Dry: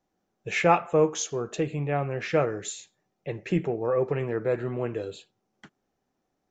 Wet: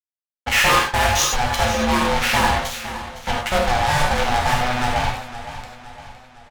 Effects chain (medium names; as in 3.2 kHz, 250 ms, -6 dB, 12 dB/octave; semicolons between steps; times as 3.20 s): steep low-pass 6.4 kHz 96 dB/octave; ring modulator 370 Hz; delay 496 ms -21 dB; fuzz box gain 35 dB, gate -40 dBFS; peaking EQ 220 Hz -9.5 dB 2.5 oct; gated-style reverb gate 120 ms flat, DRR -0.5 dB; modulated delay 511 ms, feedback 49%, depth 60 cents, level -13.5 dB